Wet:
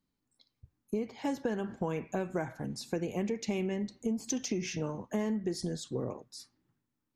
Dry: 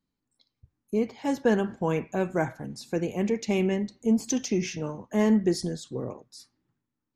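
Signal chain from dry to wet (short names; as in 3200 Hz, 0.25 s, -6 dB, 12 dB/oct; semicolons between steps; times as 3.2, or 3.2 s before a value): compressor 12:1, threshold -29 dBFS, peak gain reduction 12.5 dB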